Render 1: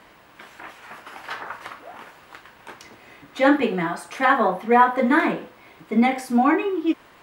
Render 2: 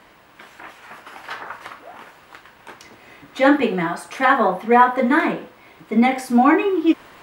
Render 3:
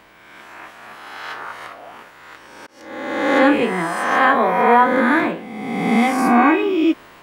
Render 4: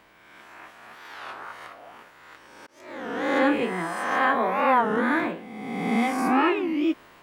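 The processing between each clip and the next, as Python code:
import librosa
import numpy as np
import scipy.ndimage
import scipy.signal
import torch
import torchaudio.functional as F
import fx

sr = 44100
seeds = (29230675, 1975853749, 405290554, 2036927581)

y1 = fx.rider(x, sr, range_db=10, speed_s=2.0)
y1 = y1 * 10.0 ** (2.5 / 20.0)
y2 = fx.spec_swells(y1, sr, rise_s=1.53)
y2 = fx.auto_swell(y2, sr, attack_ms=272.0)
y2 = y2 * 10.0 ** (-2.5 / 20.0)
y3 = fx.record_warp(y2, sr, rpm=33.33, depth_cents=250.0)
y3 = y3 * 10.0 ** (-7.5 / 20.0)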